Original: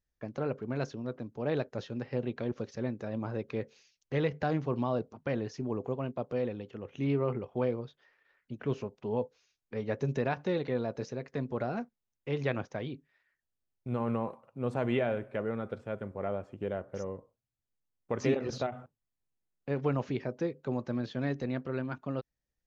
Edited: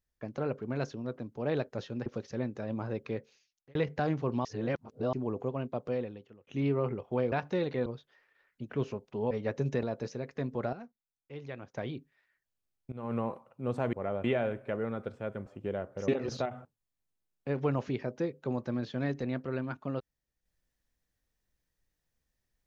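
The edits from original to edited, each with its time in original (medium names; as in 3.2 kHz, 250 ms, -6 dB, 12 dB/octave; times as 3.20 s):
2.06–2.50 s: delete
3.51–4.19 s: fade out
4.89–5.57 s: reverse
6.33–6.91 s: fade out
9.21–9.74 s: delete
10.26–10.80 s: move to 7.76 s
11.70–12.71 s: gain -11 dB
13.89–14.17 s: fade in, from -18.5 dB
16.12–16.43 s: move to 14.90 s
17.05–18.29 s: delete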